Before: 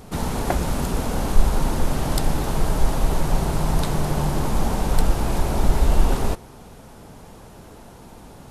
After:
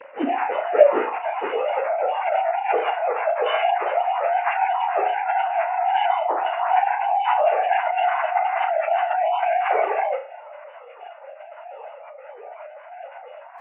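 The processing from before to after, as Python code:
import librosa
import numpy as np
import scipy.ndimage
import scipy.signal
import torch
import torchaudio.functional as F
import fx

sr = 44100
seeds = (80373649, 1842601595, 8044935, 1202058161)

p1 = fx.sine_speech(x, sr)
p2 = fx.filter_sweep_highpass(p1, sr, from_hz=220.0, to_hz=790.0, start_s=0.18, end_s=2.66, q=1.3)
p3 = fx.stretch_vocoder_free(p2, sr, factor=1.6)
p4 = p3 + fx.room_flutter(p3, sr, wall_m=6.0, rt60_s=0.33, dry=0)
p5 = fx.formant_shift(p4, sr, semitones=-3)
y = p5 * 10.0 ** (-3.0 / 20.0)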